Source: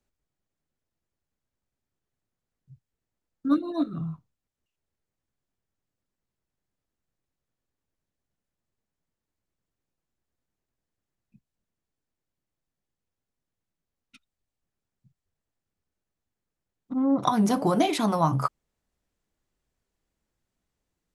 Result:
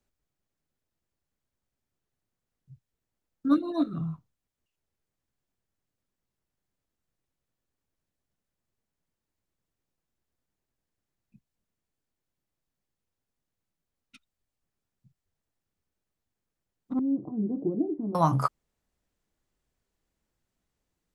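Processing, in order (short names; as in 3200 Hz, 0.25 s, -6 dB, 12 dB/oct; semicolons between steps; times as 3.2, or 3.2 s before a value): 16.99–18.15 ladder low-pass 400 Hz, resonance 55%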